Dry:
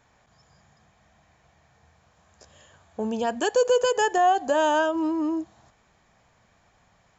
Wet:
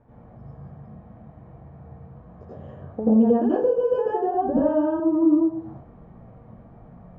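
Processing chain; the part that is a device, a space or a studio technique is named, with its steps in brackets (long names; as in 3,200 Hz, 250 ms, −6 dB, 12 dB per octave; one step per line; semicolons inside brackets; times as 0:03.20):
television next door (downward compressor 6 to 1, threshold −35 dBFS, peak gain reduction 17.5 dB; low-pass filter 560 Hz 12 dB per octave; convolution reverb RT60 0.45 s, pre-delay 79 ms, DRR −8.5 dB)
0:04.34–0:05.00: bass and treble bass +13 dB, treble −10 dB
level +9 dB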